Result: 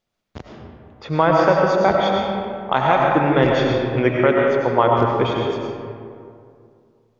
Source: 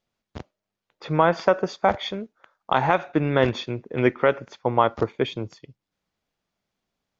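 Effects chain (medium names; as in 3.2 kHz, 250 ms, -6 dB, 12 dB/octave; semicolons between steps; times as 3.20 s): algorithmic reverb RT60 2.4 s, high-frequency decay 0.45×, pre-delay 60 ms, DRR -1.5 dB; trim +1.5 dB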